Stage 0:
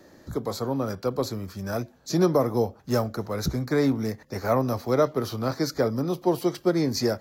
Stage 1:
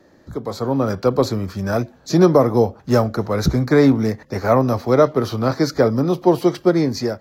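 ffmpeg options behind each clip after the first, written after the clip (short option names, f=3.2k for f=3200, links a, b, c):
-af "highshelf=f=6.3k:g=-10.5,dynaudnorm=f=260:g=5:m=11.5dB"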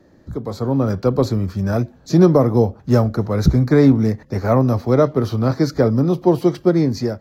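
-af "lowshelf=f=300:g=10,volume=-4dB"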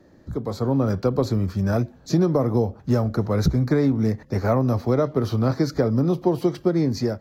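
-af "acompressor=threshold=-14dB:ratio=6,volume=-1.5dB"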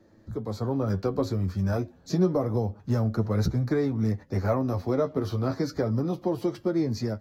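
-af "flanger=delay=9.1:depth=2.1:regen=31:speed=0.3:shape=sinusoidal,volume=-1.5dB"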